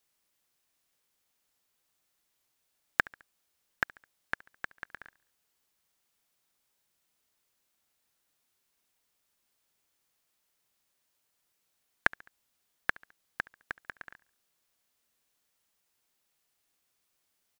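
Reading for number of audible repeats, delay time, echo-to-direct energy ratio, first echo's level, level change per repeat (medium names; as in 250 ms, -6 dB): 2, 70 ms, -22.0 dB, -23.0 dB, -6.0 dB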